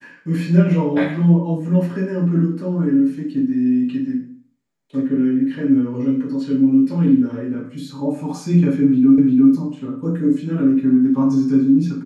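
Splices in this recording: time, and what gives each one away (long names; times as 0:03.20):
0:09.18: the same again, the last 0.35 s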